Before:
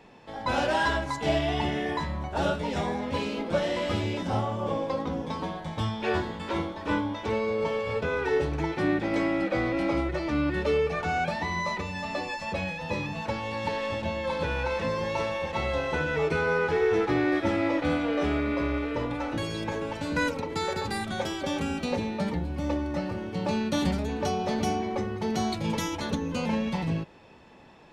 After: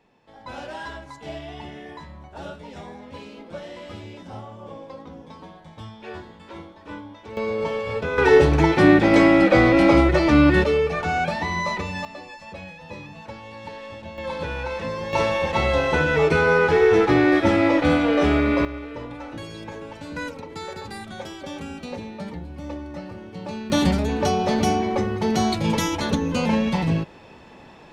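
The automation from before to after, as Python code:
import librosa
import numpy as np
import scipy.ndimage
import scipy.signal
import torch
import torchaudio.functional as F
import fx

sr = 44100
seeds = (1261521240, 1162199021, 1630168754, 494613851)

y = fx.gain(x, sr, db=fx.steps((0.0, -9.5), (7.37, 2.5), (8.18, 12.0), (10.64, 4.5), (12.05, -7.0), (14.18, 0.0), (15.13, 8.0), (18.65, -4.5), (23.7, 7.0)))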